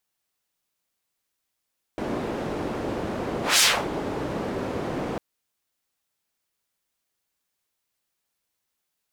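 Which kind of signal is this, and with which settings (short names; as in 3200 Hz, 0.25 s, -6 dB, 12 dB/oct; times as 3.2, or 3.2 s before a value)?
whoosh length 3.20 s, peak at 1.61, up 0.18 s, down 0.30 s, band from 380 Hz, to 5300 Hz, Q 0.92, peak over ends 12.5 dB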